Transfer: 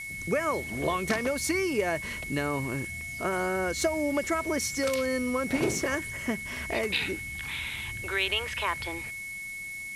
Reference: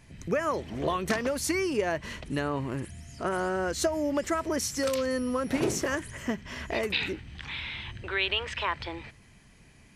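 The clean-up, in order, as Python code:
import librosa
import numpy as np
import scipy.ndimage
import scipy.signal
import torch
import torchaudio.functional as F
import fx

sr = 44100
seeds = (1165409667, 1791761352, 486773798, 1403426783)

y = fx.fix_declip(x, sr, threshold_db=-16.0)
y = fx.notch(y, sr, hz=2200.0, q=30.0)
y = fx.fix_interpolate(y, sr, at_s=(3.01, 3.81, 6.56), length_ms=1.3)
y = fx.noise_reduce(y, sr, print_start_s=9.44, print_end_s=9.94, reduce_db=10.0)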